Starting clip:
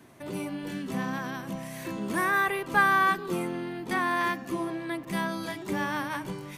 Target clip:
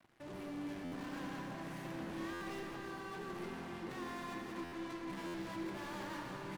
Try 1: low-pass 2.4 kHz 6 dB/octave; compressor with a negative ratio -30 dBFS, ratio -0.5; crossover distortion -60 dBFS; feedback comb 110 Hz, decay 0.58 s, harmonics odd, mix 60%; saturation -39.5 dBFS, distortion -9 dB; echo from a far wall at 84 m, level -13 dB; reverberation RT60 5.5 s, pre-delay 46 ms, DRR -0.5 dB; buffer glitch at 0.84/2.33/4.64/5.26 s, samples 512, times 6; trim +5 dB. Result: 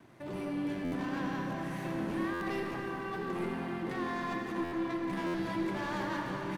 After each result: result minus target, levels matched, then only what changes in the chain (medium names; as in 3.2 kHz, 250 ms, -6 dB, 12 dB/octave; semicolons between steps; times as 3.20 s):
crossover distortion: distortion -11 dB; saturation: distortion -6 dB
change: crossover distortion -49 dBFS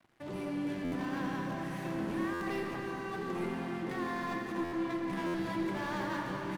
saturation: distortion -6 dB
change: saturation -51 dBFS, distortion -4 dB